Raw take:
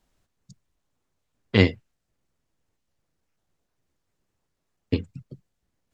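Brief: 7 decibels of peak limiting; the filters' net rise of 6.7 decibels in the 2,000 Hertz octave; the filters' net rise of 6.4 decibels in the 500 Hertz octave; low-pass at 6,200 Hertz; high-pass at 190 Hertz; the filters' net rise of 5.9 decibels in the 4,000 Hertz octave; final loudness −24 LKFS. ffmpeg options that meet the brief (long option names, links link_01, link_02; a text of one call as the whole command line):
ffmpeg -i in.wav -af "highpass=190,lowpass=6200,equalizer=frequency=500:width_type=o:gain=7.5,equalizer=frequency=2000:width_type=o:gain=5.5,equalizer=frequency=4000:width_type=o:gain=6,volume=1dB,alimiter=limit=-6.5dB:level=0:latency=1" out.wav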